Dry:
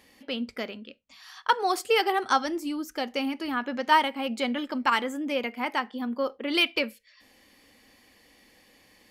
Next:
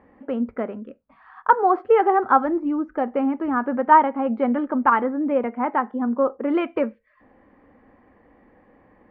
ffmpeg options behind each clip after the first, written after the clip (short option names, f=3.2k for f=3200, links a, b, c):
-af "lowpass=f=1.4k:w=0.5412,lowpass=f=1.4k:w=1.3066,volume=8dB"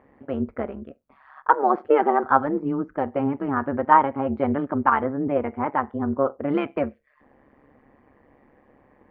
-af "tremolo=f=140:d=0.788,volume=1.5dB"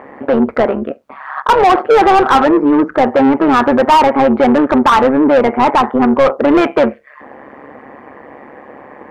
-filter_complex "[0:a]asplit=2[a][b];[b]highpass=f=720:p=1,volume=32dB,asoftclip=type=tanh:threshold=-1.5dB[c];[a][c]amix=inputs=2:normalize=0,lowpass=f=1.6k:p=1,volume=-6dB,volume=1.5dB"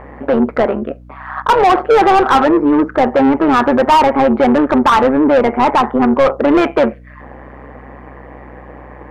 -af "aeval=exprs='val(0)+0.0158*(sin(2*PI*60*n/s)+sin(2*PI*2*60*n/s)/2+sin(2*PI*3*60*n/s)/3+sin(2*PI*4*60*n/s)/4+sin(2*PI*5*60*n/s)/5)':c=same,volume=-1dB"